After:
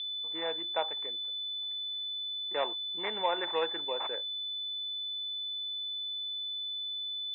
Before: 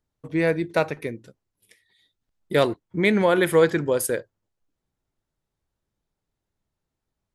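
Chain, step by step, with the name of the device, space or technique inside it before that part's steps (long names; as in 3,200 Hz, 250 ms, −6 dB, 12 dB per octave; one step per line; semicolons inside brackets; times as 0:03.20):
toy sound module (linearly interpolated sample-rate reduction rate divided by 8×; switching amplifier with a slow clock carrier 3,500 Hz; loudspeaker in its box 800–3,600 Hz, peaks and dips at 860 Hz +8 dB, 1,400 Hz −4 dB, 2,100 Hz +3 dB, 3,000 Hz +5 dB)
level −6 dB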